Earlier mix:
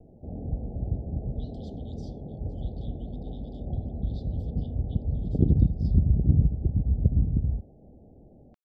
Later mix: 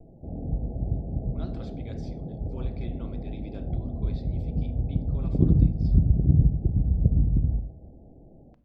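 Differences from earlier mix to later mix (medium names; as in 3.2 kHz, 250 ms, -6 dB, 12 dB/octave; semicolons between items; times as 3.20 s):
speech: remove brick-wall FIR high-pass 2.9 kHz; reverb: on, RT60 0.45 s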